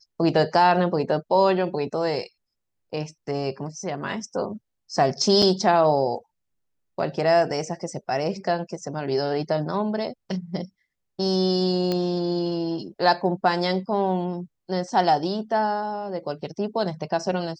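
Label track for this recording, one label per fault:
5.420000	5.420000	drop-out 5 ms
11.920000	11.920000	click −13 dBFS

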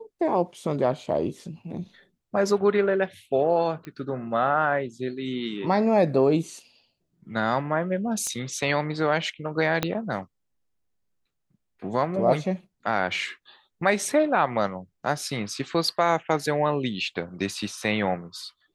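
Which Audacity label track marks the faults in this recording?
3.850000	3.850000	click −25 dBFS
8.270000	8.270000	click −18 dBFS
9.830000	9.830000	click −8 dBFS

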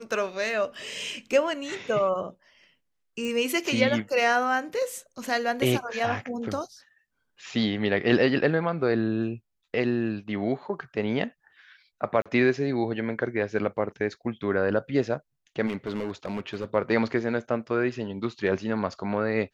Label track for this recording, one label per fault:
3.250000	3.250000	click
12.220000	12.260000	drop-out 36 ms
15.660000	16.650000	clipping −25 dBFS

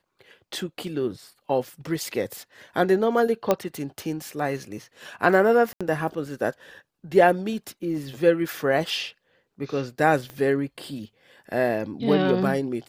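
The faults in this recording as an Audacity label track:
3.510000	3.510000	click −7 dBFS
5.730000	5.810000	drop-out 76 ms
10.300000	10.300000	click −23 dBFS

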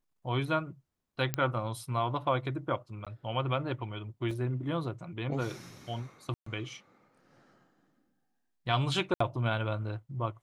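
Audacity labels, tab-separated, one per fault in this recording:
1.340000	1.340000	click −13 dBFS
3.050000	3.070000	drop-out 16 ms
4.310000	4.310000	drop-out 2.9 ms
6.340000	6.460000	drop-out 124 ms
9.140000	9.200000	drop-out 64 ms

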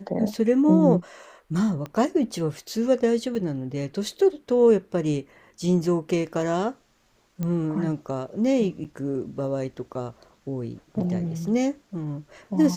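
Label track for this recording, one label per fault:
1.860000	1.860000	click −21 dBFS
3.350000	3.350000	drop-out 2.8 ms
7.430000	7.430000	click −17 dBFS
8.840000	8.850000	drop-out 7.2 ms

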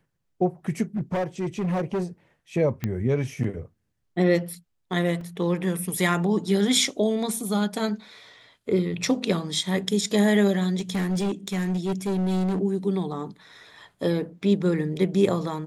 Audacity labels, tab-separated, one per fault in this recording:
0.960000	2.040000	clipping −22.5 dBFS
2.840000	2.840000	click −14 dBFS
5.210000	5.210000	drop-out 3 ms
10.790000	12.600000	clipping −22 dBFS

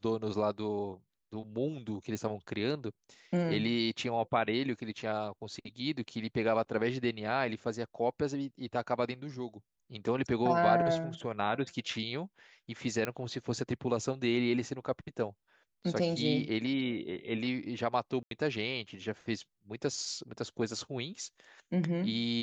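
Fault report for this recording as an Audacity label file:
2.150000	2.150000	click −23 dBFS
13.050000	13.050000	click −18 dBFS
18.230000	18.310000	drop-out 82 ms

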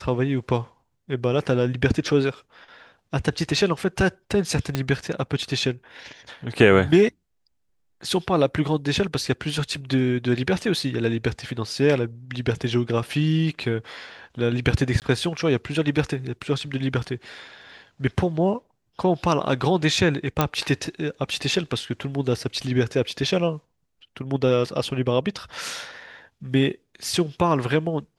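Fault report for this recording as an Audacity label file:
4.750000	4.750000	click −9 dBFS
15.000000	15.020000	drop-out 18 ms
20.410000	20.410000	click −5 dBFS

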